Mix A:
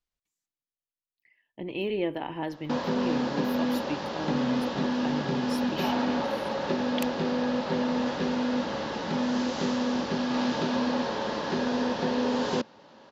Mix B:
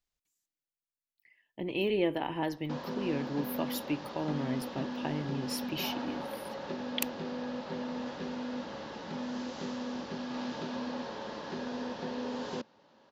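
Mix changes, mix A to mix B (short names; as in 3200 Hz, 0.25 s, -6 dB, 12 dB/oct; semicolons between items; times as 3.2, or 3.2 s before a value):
speech: add high shelf 6900 Hz +9 dB; background -10.0 dB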